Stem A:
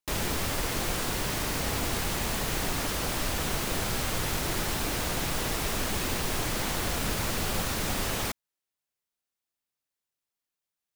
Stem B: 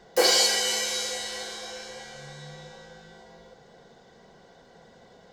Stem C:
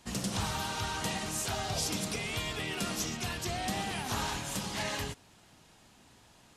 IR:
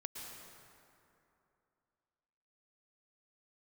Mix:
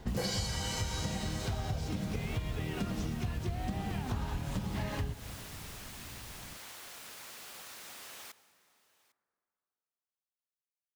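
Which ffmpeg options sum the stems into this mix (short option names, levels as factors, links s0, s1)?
-filter_complex "[0:a]highpass=f=1200:p=1,volume=0.158,asplit=3[s0][s1][s2];[s1]volume=0.282[s3];[s2]volume=0.0794[s4];[1:a]acrusher=bits=10:mix=0:aa=0.000001,volume=0.708[s5];[2:a]aemphasis=mode=reproduction:type=riaa,volume=1.06,asplit=2[s6][s7];[s7]volume=0.211[s8];[3:a]atrim=start_sample=2205[s9];[s3][s8]amix=inputs=2:normalize=0[s10];[s10][s9]afir=irnorm=-1:irlink=0[s11];[s4]aecho=0:1:801:1[s12];[s0][s5][s6][s11][s12]amix=inputs=5:normalize=0,acompressor=threshold=0.0251:ratio=6"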